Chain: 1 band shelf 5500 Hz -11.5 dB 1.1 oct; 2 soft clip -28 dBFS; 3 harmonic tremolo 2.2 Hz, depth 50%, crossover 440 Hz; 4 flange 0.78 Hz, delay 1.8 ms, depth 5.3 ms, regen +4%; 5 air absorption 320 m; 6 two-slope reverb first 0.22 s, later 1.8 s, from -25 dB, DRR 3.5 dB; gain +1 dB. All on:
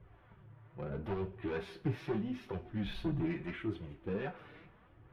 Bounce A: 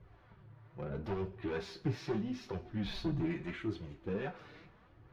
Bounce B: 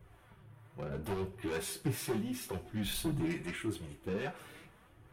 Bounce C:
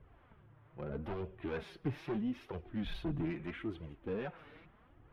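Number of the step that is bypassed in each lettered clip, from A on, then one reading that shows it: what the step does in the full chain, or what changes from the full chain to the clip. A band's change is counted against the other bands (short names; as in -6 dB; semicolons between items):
1, 4 kHz band +3.0 dB; 5, 4 kHz band +7.5 dB; 6, momentary loudness spread change -8 LU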